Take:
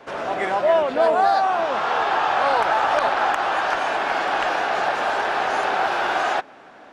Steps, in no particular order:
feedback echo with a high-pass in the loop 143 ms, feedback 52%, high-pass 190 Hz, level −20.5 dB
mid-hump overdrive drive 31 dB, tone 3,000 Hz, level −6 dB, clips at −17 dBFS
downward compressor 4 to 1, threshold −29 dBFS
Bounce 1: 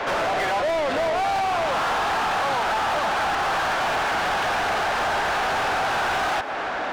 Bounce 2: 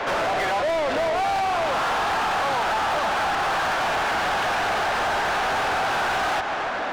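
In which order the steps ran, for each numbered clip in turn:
downward compressor, then mid-hump overdrive, then feedback echo with a high-pass in the loop
feedback echo with a high-pass in the loop, then downward compressor, then mid-hump overdrive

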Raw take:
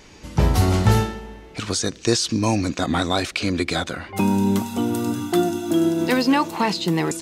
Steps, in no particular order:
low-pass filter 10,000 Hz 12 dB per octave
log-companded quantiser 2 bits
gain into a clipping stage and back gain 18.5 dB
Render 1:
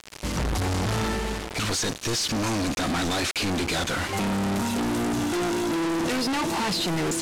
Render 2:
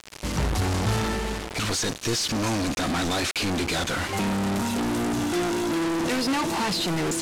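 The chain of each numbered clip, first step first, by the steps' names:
gain into a clipping stage and back, then log-companded quantiser, then low-pass filter
log-companded quantiser, then gain into a clipping stage and back, then low-pass filter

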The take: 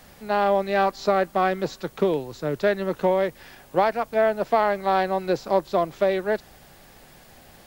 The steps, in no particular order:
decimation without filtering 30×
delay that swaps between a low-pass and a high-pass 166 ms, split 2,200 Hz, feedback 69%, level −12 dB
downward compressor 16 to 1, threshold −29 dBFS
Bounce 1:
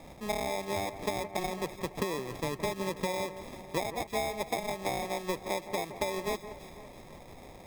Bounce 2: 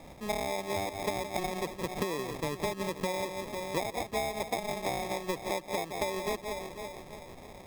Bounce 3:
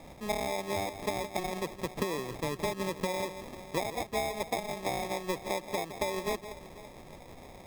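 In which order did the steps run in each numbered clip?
decimation without filtering, then downward compressor, then delay that swaps between a low-pass and a high-pass
delay that swaps between a low-pass and a high-pass, then decimation without filtering, then downward compressor
downward compressor, then delay that swaps between a low-pass and a high-pass, then decimation without filtering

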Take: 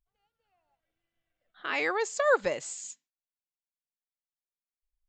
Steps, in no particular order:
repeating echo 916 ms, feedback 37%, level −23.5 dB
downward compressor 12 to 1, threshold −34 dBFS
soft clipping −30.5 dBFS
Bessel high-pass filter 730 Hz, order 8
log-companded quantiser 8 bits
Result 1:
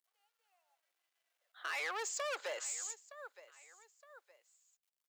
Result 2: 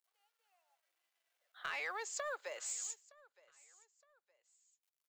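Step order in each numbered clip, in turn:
repeating echo, then soft clipping, then log-companded quantiser, then Bessel high-pass filter, then downward compressor
downward compressor, then log-companded quantiser, then Bessel high-pass filter, then soft clipping, then repeating echo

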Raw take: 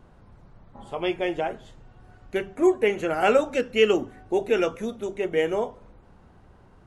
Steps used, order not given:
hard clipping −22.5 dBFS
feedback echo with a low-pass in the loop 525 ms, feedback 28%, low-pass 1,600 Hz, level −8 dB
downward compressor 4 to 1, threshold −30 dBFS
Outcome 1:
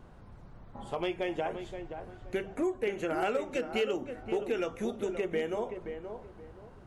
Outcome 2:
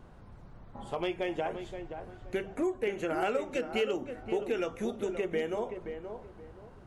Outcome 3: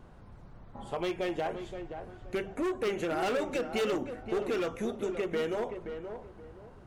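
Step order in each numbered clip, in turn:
downward compressor, then feedback echo with a low-pass in the loop, then hard clipping
downward compressor, then hard clipping, then feedback echo with a low-pass in the loop
hard clipping, then downward compressor, then feedback echo with a low-pass in the loop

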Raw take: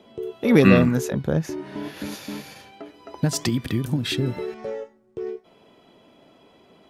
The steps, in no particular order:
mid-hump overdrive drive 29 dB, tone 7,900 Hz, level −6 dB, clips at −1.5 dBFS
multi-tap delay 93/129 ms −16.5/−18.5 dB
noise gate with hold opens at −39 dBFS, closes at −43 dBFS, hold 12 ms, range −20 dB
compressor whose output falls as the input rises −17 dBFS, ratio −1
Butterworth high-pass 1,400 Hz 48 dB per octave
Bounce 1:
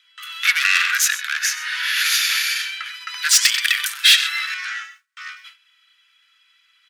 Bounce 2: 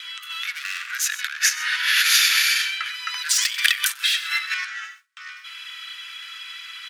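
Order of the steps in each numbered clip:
multi-tap delay, then compressor whose output falls as the input rises, then noise gate with hold, then mid-hump overdrive, then Butterworth high-pass
mid-hump overdrive, then multi-tap delay, then compressor whose output falls as the input rises, then Butterworth high-pass, then noise gate with hold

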